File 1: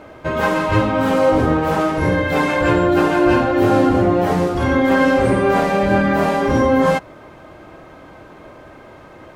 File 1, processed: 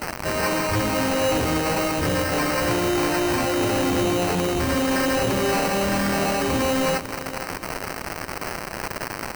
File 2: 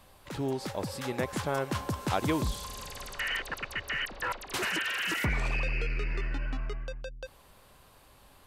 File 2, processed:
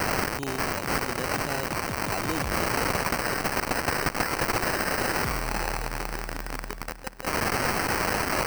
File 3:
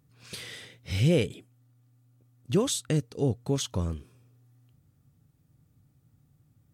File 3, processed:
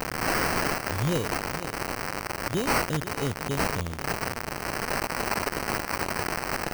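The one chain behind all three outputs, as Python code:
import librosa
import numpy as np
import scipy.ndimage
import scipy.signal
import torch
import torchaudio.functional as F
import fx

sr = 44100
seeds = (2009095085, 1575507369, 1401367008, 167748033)

p1 = x + 0.5 * 10.0 ** (-9.0 / 20.0) * np.diff(np.sign(x), prepend=np.sign(x[:1]))
p2 = fx.sample_hold(p1, sr, seeds[0], rate_hz=3400.0, jitter_pct=0)
p3 = fx.high_shelf(p2, sr, hz=10000.0, db=9.0)
p4 = 10.0 ** (-15.0 / 20.0) * np.tanh(p3 / 10.0 ** (-15.0 / 20.0))
p5 = fx.peak_eq(p4, sr, hz=13000.0, db=-6.0, octaves=0.45)
p6 = p5 + fx.echo_feedback(p5, sr, ms=490, feedback_pct=39, wet_db=-14, dry=0)
y = p6 * 10.0 ** (-3.0 / 20.0)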